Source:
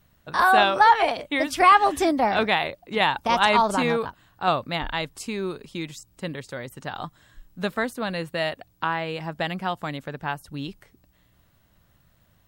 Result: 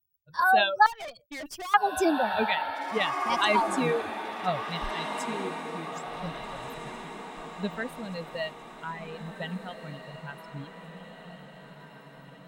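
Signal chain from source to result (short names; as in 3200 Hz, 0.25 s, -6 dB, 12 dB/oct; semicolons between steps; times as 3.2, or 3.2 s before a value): per-bin expansion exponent 2; reverb removal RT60 0.7 s; diffused feedback echo 1.679 s, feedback 51%, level -9 dB; 0.86–1.74 tube stage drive 36 dB, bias 0.45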